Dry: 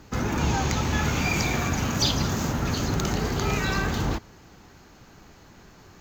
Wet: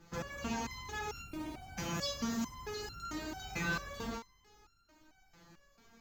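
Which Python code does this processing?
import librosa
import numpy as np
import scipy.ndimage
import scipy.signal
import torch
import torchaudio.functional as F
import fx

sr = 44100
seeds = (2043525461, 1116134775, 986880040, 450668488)

y = fx.median_filter(x, sr, points=25, at=(1.22, 1.77))
y = y + 10.0 ** (-22.5 / 20.0) * np.pad(y, (int(505 * sr / 1000.0), 0))[:len(y)]
y = fx.resonator_held(y, sr, hz=4.5, low_hz=170.0, high_hz=1400.0)
y = y * librosa.db_to_amplitude(2.5)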